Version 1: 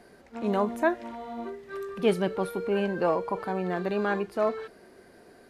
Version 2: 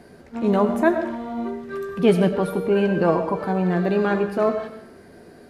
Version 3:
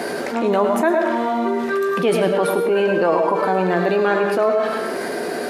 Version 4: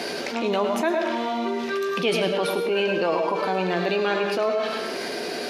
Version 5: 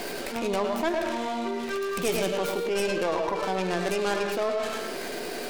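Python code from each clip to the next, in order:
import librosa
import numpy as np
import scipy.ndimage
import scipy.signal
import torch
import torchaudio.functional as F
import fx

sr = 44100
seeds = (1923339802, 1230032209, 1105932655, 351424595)

y1 = fx.peak_eq(x, sr, hz=120.0, db=8.5, octaves=2.6)
y1 = fx.doubler(y1, sr, ms=12.0, db=-10.5)
y1 = fx.rev_freeverb(y1, sr, rt60_s=0.74, hf_ratio=0.6, predelay_ms=55, drr_db=8.5)
y1 = y1 * librosa.db_to_amplitude(3.5)
y2 = scipy.signal.sosfilt(scipy.signal.butter(2, 370.0, 'highpass', fs=sr, output='sos'), y1)
y2 = y2 + 10.0 ** (-10.0 / 20.0) * np.pad(y2, (int(107 * sr / 1000.0), 0))[:len(y2)]
y2 = fx.env_flatten(y2, sr, amount_pct=70)
y3 = fx.band_shelf(y2, sr, hz=3800.0, db=10.0, octaves=1.7)
y3 = y3 * librosa.db_to_amplitude(-6.0)
y4 = fx.tracing_dist(y3, sr, depth_ms=0.3)
y4 = y4 * librosa.db_to_amplitude(-4.0)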